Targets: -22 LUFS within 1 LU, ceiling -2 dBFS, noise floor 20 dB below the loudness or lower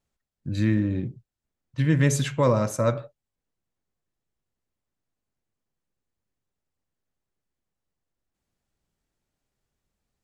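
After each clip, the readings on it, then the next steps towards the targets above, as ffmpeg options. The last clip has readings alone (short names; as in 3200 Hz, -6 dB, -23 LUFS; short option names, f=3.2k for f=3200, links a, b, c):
loudness -24.5 LUFS; peak -9.5 dBFS; loudness target -22.0 LUFS
-> -af "volume=2.5dB"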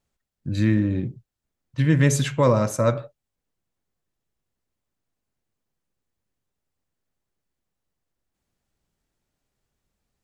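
loudness -22.0 LUFS; peak -7.0 dBFS; noise floor -83 dBFS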